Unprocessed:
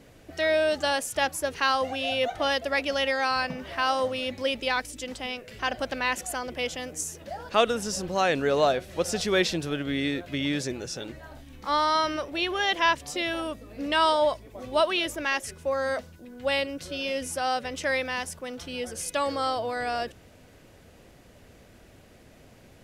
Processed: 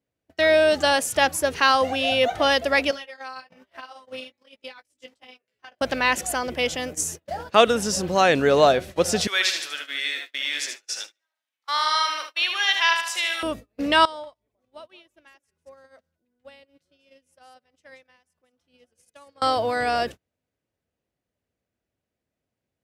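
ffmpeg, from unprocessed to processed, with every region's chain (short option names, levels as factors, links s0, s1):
-filter_complex "[0:a]asettb=1/sr,asplit=3[s0][s1][s2];[s0]atrim=end=2.914[s3];[s1]atrim=start=2.91:end=5.81,asetpts=PTS-STARTPTS,afade=t=in:d=0.004:c=qsin,afade=t=out:st=2.896:d=0.004:c=qsin,highpass=f=340:p=1,acompressor=threshold=0.0224:ratio=20:attack=3.2:release=140:knee=1:detection=peak,flanger=delay=15:depth=4.4:speed=1.2[s4];[s2]atrim=start=5.806[s5];[s3][s4]acrossfade=d=0.004:c1=hsin:c2=qsin[s6];[s6][s5]acrossfade=d=0.004:c1=qsin:c2=hsin,asettb=1/sr,asplit=3[s7][s8][s9];[s7]atrim=end=9.274[s10];[s8]atrim=start=9.27:end=13.43,asetpts=PTS-STARTPTS,afade=t=in:d=0.004:c=qsin,afade=t=out:st=4.156:d=0.004:c=qsin,highpass=1500,aecho=1:1:75|150|225|300|375|450:0.501|0.241|0.115|0.0554|0.0266|0.0128,atrim=end_sample=183456[s11];[s9]atrim=start=13.426[s12];[s10][s11]acrossfade=d=0.004:c1=hsin:c2=qsin[s13];[s13][s12]acrossfade=d=0.004:c1=qsin:c2=hsin,asettb=1/sr,asplit=3[s14][s15][s16];[s14]atrim=end=14.054[s17];[s15]atrim=start=14.05:end=19.42,asetpts=PTS-STARTPTS,afade=t=in:d=0.004:c=qsin,afade=t=out:st=5.366:d=0.004:c=qsin,acompressor=threshold=0.00891:ratio=5:attack=3.2:release=140:knee=1:detection=peak,aecho=1:1:187:0.188,atrim=end_sample=236817[s18];[s16]atrim=start=19.416[s19];[s17][s18]acrossfade=d=0.004:c1=hsin:c2=qsin[s20];[s20][s19]acrossfade=d=0.004:c1=qsin:c2=hsin,agate=range=0.0141:threshold=0.0112:ratio=16:detection=peak,highpass=54,volume=2"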